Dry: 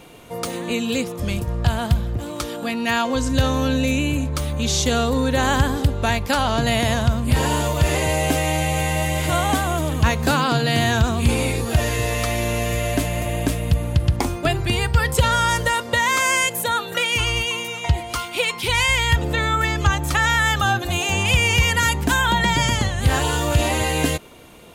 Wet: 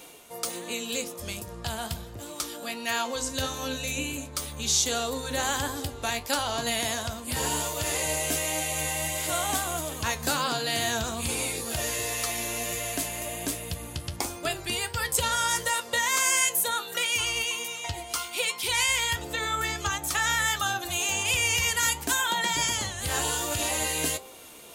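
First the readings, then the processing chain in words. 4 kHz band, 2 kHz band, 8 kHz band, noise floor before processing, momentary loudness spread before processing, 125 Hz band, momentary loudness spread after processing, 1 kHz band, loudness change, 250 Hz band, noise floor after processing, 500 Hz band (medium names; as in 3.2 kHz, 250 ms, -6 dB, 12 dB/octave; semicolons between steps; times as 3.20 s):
-4.5 dB, -7.5 dB, +1.0 dB, -32 dBFS, 6 LU, -17.5 dB, 10 LU, -8.5 dB, -7.0 dB, -14.0 dB, -42 dBFS, -10.0 dB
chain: de-hum 65.18 Hz, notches 17; reverse; upward compressor, threshold -33 dBFS; reverse; tone controls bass -10 dB, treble +10 dB; flange 1.4 Hz, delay 9.5 ms, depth 4.8 ms, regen +61%; trim -4 dB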